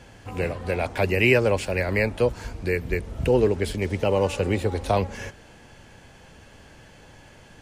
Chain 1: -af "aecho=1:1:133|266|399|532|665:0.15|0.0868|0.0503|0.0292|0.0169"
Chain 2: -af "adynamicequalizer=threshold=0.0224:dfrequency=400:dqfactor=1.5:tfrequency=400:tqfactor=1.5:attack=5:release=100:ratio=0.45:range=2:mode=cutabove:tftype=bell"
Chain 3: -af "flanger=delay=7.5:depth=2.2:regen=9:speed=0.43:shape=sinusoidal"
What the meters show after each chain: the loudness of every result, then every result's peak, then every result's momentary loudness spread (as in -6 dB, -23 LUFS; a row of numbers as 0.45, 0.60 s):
-24.0, -25.0, -27.0 LUFS; -6.5, -6.5, -9.0 dBFS; 10, 10, 10 LU